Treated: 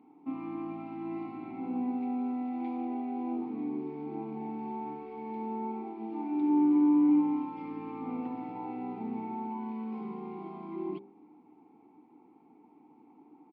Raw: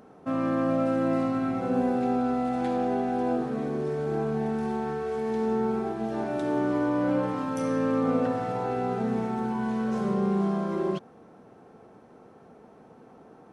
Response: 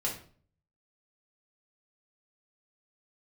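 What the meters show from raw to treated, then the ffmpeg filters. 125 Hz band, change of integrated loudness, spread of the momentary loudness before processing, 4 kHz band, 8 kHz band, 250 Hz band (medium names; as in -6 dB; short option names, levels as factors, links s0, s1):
-16.0 dB, -5.5 dB, 5 LU, under -15 dB, no reading, -3.0 dB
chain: -filter_complex "[0:a]asplit=3[s0][s1][s2];[s0]bandpass=f=300:t=q:w=8,volume=1[s3];[s1]bandpass=f=870:t=q:w=8,volume=0.501[s4];[s2]bandpass=f=2240:t=q:w=8,volume=0.355[s5];[s3][s4][s5]amix=inputs=3:normalize=0,aresample=11025,aresample=44100,bandreject=f=65.97:t=h:w=4,bandreject=f=131.94:t=h:w=4,bandreject=f=197.91:t=h:w=4,bandreject=f=263.88:t=h:w=4,bandreject=f=329.85:t=h:w=4,bandreject=f=395.82:t=h:w=4,bandreject=f=461.79:t=h:w=4,bandreject=f=527.76:t=h:w=4,bandreject=f=593.73:t=h:w=4,volume=1.68"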